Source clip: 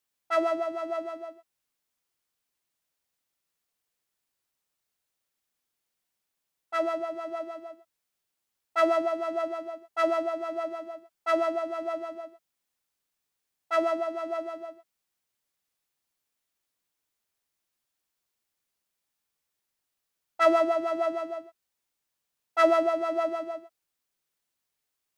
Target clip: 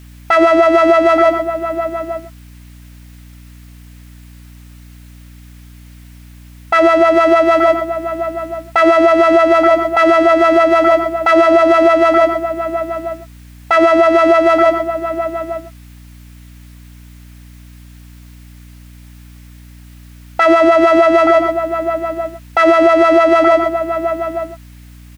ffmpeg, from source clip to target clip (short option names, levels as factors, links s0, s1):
-filter_complex "[0:a]equalizer=f=2000:t=o:w=1.4:g=7.5,acompressor=threshold=0.0178:ratio=3,asplit=2[s0][s1];[s1]adelay=874.6,volume=0.224,highshelf=f=4000:g=-19.7[s2];[s0][s2]amix=inputs=2:normalize=0,aeval=exprs='val(0)+0.000398*(sin(2*PI*60*n/s)+sin(2*PI*2*60*n/s)/2+sin(2*PI*3*60*n/s)/3+sin(2*PI*4*60*n/s)/4+sin(2*PI*5*60*n/s)/5)':c=same,alimiter=level_in=42.2:limit=0.891:release=50:level=0:latency=1,volume=0.891"